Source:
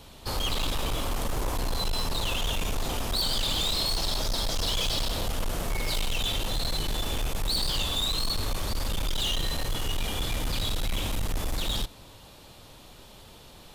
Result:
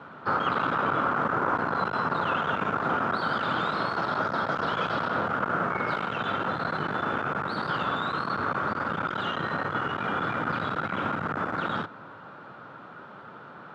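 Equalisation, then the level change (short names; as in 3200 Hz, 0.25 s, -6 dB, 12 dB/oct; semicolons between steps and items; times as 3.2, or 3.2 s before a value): HPF 140 Hz 24 dB/oct; synth low-pass 1400 Hz, resonance Q 7.5; low shelf 330 Hz +3 dB; +3.0 dB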